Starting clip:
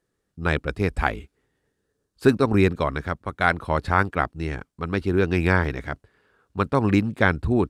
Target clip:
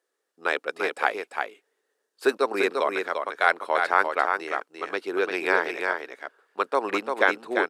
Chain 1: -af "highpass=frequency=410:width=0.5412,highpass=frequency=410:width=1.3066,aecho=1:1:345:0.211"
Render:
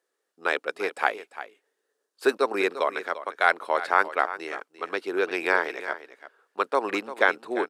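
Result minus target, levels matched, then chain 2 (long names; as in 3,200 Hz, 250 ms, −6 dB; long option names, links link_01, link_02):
echo-to-direct −8.5 dB
-af "highpass=frequency=410:width=0.5412,highpass=frequency=410:width=1.3066,aecho=1:1:345:0.562"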